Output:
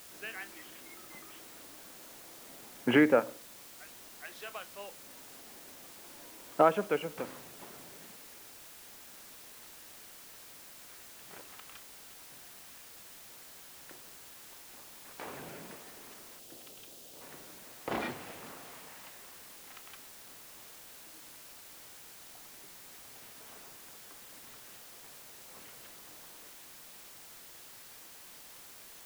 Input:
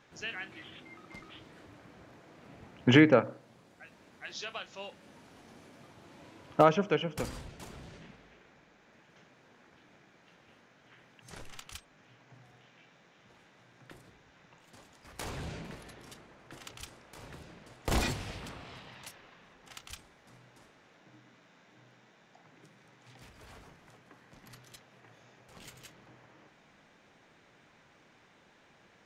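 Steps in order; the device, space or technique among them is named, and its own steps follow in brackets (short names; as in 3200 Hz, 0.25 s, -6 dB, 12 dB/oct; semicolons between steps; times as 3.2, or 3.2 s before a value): wax cylinder (BPF 260–2300 Hz; wow and flutter; white noise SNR 12 dB); 16.39–17.21 band shelf 1400 Hz -9 dB; gain -1 dB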